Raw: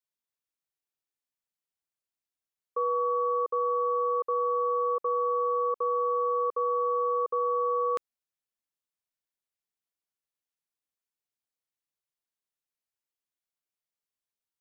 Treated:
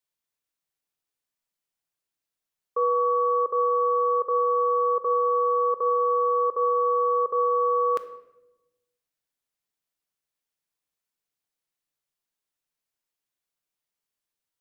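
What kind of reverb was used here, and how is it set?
shoebox room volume 390 m³, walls mixed, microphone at 0.42 m; gain +4 dB

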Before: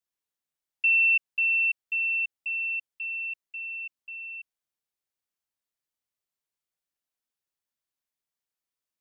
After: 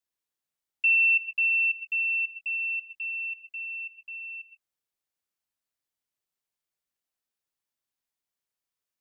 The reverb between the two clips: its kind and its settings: non-linear reverb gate 0.16 s rising, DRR 11.5 dB

